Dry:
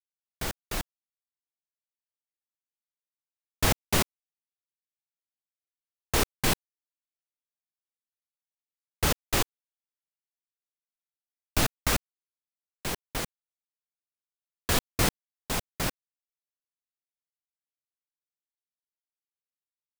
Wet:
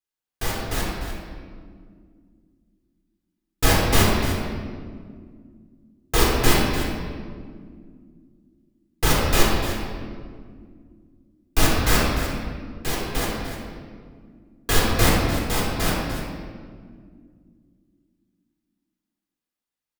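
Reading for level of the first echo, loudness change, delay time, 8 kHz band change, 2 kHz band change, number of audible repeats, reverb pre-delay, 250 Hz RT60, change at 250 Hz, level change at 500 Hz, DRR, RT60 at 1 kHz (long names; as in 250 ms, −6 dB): −10.0 dB, +6.0 dB, 297 ms, +5.0 dB, +8.0 dB, 1, 3 ms, 3.6 s, +10.5 dB, +9.5 dB, −5.0 dB, 1.7 s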